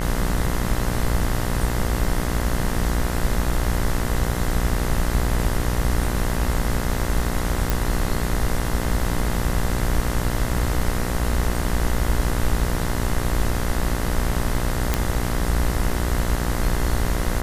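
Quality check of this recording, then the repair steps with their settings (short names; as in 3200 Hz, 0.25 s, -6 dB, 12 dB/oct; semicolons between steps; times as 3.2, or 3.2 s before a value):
buzz 60 Hz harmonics 35 -26 dBFS
7.7 pop
14.94 pop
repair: de-click; de-hum 60 Hz, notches 35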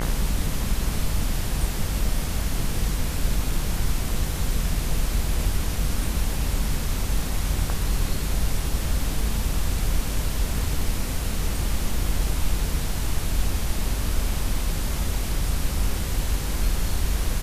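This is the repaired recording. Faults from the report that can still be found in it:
none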